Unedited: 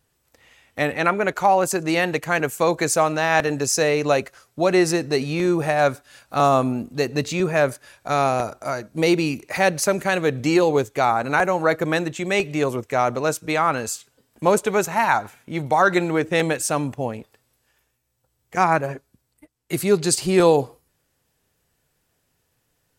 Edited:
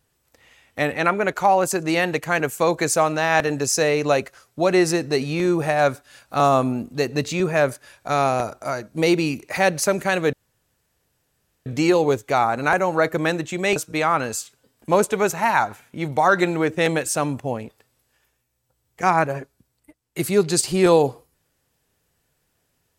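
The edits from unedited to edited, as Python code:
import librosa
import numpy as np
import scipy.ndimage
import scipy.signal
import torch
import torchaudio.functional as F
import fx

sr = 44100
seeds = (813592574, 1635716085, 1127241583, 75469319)

y = fx.edit(x, sr, fx.insert_room_tone(at_s=10.33, length_s=1.33),
    fx.cut(start_s=12.43, length_s=0.87), tone=tone)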